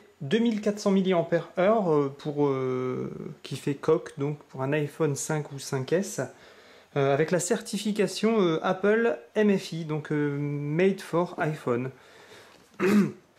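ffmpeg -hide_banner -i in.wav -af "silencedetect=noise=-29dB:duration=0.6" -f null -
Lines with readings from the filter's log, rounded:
silence_start: 6.25
silence_end: 6.96 | silence_duration: 0.71
silence_start: 11.88
silence_end: 12.80 | silence_duration: 0.92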